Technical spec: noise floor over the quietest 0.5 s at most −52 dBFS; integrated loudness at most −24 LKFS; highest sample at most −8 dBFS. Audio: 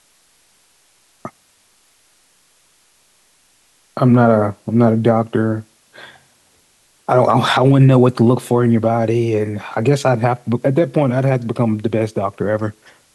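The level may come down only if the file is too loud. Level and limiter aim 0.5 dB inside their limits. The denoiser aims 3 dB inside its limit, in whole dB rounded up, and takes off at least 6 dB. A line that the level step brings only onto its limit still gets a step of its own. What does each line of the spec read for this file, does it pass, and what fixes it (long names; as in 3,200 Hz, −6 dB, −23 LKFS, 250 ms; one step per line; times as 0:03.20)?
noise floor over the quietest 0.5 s −56 dBFS: in spec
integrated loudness −15.5 LKFS: out of spec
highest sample −2.5 dBFS: out of spec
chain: level −9 dB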